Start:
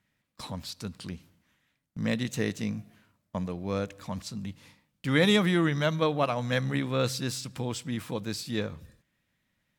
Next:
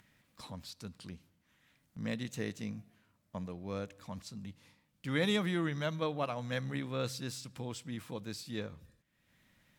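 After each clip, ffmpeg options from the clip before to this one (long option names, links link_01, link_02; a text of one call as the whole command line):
ffmpeg -i in.wav -af "acompressor=mode=upward:threshold=-45dB:ratio=2.5,volume=-8.5dB" out.wav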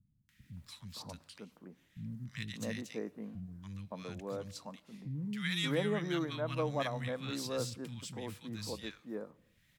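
ffmpeg -i in.wav -filter_complex "[0:a]acrossover=split=200|1400[link_01][link_02][link_03];[link_03]adelay=290[link_04];[link_02]adelay=570[link_05];[link_01][link_05][link_04]amix=inputs=3:normalize=0,volume=1dB" out.wav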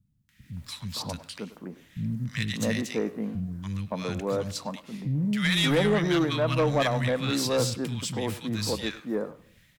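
ffmpeg -i in.wav -filter_complex "[0:a]asoftclip=type=tanh:threshold=-30dB,dynaudnorm=framelen=330:gausssize=3:maxgain=10dB,asplit=2[link_01][link_02];[link_02]adelay=100,highpass=300,lowpass=3400,asoftclip=type=hard:threshold=-29dB,volume=-14dB[link_03];[link_01][link_03]amix=inputs=2:normalize=0,volume=3dB" out.wav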